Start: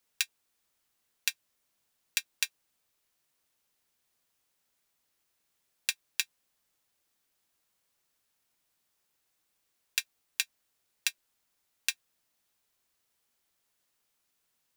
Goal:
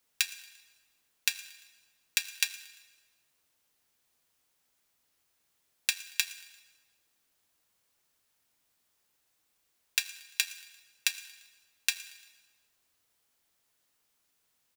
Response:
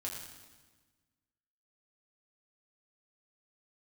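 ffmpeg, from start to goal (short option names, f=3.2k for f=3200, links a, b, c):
-filter_complex "[0:a]aecho=1:1:115|230|345:0.0708|0.0368|0.0191,asplit=2[a][b];[1:a]atrim=start_sample=2205[c];[b][c]afir=irnorm=-1:irlink=0,volume=-7.5dB[d];[a][d]amix=inputs=2:normalize=0"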